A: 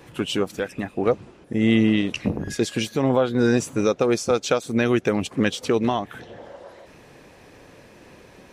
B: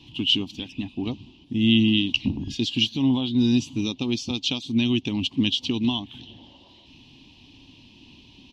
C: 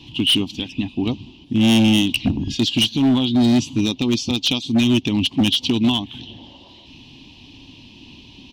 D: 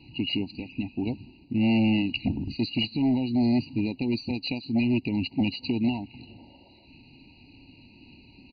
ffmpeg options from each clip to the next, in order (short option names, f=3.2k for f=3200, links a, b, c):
-af "firequalizer=gain_entry='entry(110,0);entry(180,-5);entry(260,4);entry(480,-24);entry(940,-7);entry(1400,-29);entry(2000,-16);entry(2900,11);entry(8600,-19)':delay=0.05:min_phase=1"
-af "volume=19dB,asoftclip=hard,volume=-19dB,volume=7dB"
-af "aresample=11025,aresample=44100,afftfilt=real='re*eq(mod(floor(b*sr/1024/970),2),0)':imag='im*eq(mod(floor(b*sr/1024/970),2),0)':win_size=1024:overlap=0.75,volume=-7.5dB"